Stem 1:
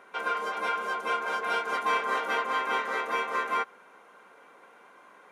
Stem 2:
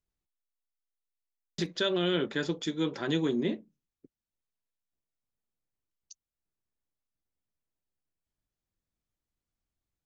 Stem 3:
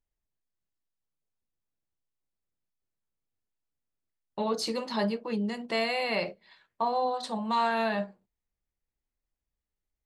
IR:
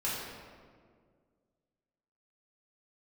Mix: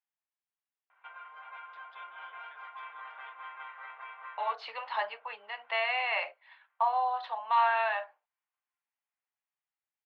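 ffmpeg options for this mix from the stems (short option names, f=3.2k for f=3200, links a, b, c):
-filter_complex "[0:a]alimiter=level_in=0.5dB:limit=-24dB:level=0:latency=1:release=450,volume=-0.5dB,adelay=900,volume=-14dB,asplit=2[a][b];[b]volume=-21.5dB[c];[1:a]acompressor=threshold=-37dB:ratio=4,adelay=150,volume=-16.5dB[d];[2:a]volume=-1.5dB[e];[c]aecho=0:1:613|1226|1839|2452|3065|3678|4291:1|0.51|0.26|0.133|0.0677|0.0345|0.0176[f];[a][d][e][f]amix=inputs=4:normalize=0,dynaudnorm=f=620:g=5:m=4dB,asuperpass=centerf=1500:order=8:qfactor=0.63"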